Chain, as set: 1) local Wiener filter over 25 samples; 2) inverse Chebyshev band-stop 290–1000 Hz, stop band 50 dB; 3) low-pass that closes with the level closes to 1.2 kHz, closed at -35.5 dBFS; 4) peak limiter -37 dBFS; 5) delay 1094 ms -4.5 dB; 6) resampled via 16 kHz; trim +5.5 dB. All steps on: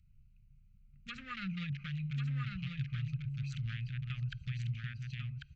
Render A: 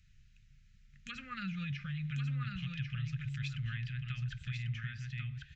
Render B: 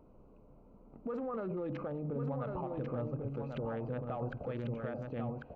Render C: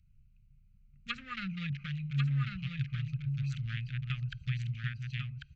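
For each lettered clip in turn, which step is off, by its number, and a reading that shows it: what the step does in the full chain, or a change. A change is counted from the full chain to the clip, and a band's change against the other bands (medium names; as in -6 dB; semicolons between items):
1, 2 kHz band +1.5 dB; 2, 1 kHz band +13.5 dB; 4, crest factor change +4.5 dB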